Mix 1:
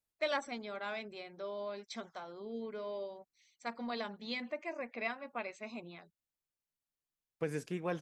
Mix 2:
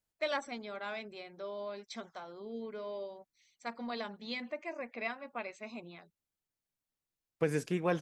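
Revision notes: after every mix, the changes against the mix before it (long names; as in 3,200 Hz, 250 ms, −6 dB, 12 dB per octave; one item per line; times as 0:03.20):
second voice +5.5 dB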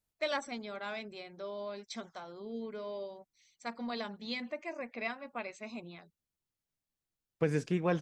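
second voice: add high-frequency loss of the air 80 metres
master: add bass and treble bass +4 dB, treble +4 dB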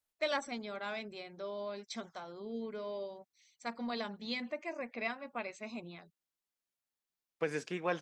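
second voice: add meter weighting curve A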